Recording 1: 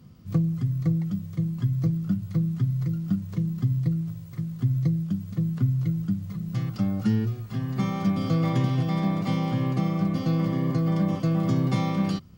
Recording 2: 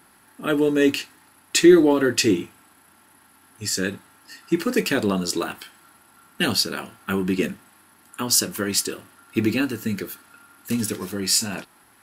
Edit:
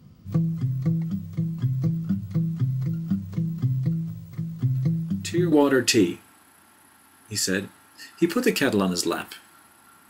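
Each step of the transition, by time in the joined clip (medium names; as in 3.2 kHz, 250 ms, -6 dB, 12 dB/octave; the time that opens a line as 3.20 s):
recording 1
4.75 s: add recording 2 from 1.05 s 0.77 s -13 dB
5.52 s: go over to recording 2 from 1.82 s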